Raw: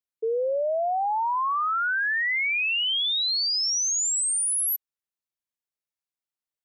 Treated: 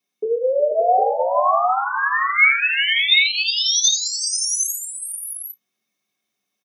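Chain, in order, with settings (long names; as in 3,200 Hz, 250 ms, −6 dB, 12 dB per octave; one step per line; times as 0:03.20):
high-pass filter 590 Hz 6 dB per octave
brickwall limiter −33.5 dBFS, peak gain reduction 11.5 dB
multi-tap delay 85/368/487/571/756 ms −9/−12.5/−11/−9.5/−4 dB
convolution reverb RT60 0.30 s, pre-delay 3 ms, DRR −5.5 dB
level +6 dB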